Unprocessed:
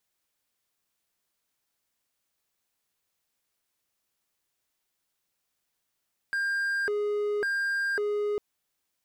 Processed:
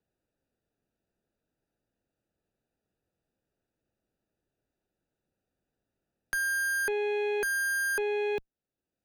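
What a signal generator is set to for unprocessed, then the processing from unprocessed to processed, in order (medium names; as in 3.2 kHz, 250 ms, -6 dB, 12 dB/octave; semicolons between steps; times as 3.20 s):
siren hi-lo 415–1600 Hz 0.91 per s triangle -23.5 dBFS 2.05 s
local Wiener filter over 41 samples; Chebyshev shaper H 5 -45 dB, 6 -24 dB, 7 -31 dB, 8 -11 dB, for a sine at -24.5 dBFS; three bands compressed up and down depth 40%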